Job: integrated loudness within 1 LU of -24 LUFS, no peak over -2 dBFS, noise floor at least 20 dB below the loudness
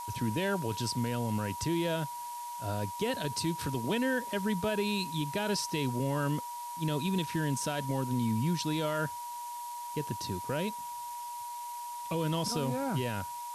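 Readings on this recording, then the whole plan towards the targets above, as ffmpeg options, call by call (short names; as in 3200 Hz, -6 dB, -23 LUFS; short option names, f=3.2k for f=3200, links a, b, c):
steady tone 960 Hz; tone level -38 dBFS; noise floor -41 dBFS; noise floor target -53 dBFS; loudness -33.0 LUFS; peak -20.5 dBFS; loudness target -24.0 LUFS
-> -af "bandreject=f=960:w=30"
-af "afftdn=nr=12:nf=-41"
-af "volume=9dB"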